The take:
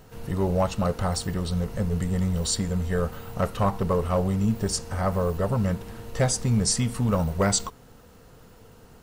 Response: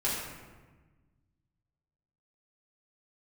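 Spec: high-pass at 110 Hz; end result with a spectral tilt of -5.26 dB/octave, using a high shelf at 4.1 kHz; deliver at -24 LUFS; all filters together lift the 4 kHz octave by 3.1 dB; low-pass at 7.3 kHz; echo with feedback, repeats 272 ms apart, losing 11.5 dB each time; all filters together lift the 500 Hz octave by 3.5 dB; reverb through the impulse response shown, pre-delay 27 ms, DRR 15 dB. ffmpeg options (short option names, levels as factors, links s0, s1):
-filter_complex "[0:a]highpass=110,lowpass=7300,equalizer=f=500:t=o:g=4,equalizer=f=4000:t=o:g=8,highshelf=f=4100:g=-5,aecho=1:1:272|544|816:0.266|0.0718|0.0194,asplit=2[s0][s1];[1:a]atrim=start_sample=2205,adelay=27[s2];[s1][s2]afir=irnorm=-1:irlink=0,volume=0.0668[s3];[s0][s3]amix=inputs=2:normalize=0,volume=1.19"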